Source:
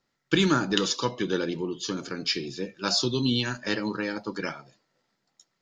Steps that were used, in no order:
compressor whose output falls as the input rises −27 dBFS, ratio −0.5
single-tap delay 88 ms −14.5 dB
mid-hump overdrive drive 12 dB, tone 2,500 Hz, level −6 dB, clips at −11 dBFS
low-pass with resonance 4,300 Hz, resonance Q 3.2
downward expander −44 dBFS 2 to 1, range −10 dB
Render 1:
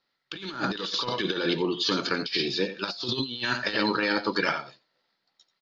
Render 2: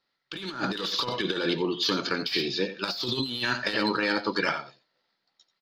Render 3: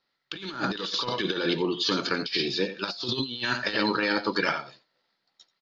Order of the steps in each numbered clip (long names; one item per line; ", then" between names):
single-tap delay, then mid-hump overdrive, then downward expander, then low-pass with resonance, then compressor whose output falls as the input rises
downward expander, then low-pass with resonance, then mid-hump overdrive, then single-tap delay, then compressor whose output falls as the input rises
single-tap delay, then mid-hump overdrive, then low-pass with resonance, then compressor whose output falls as the input rises, then downward expander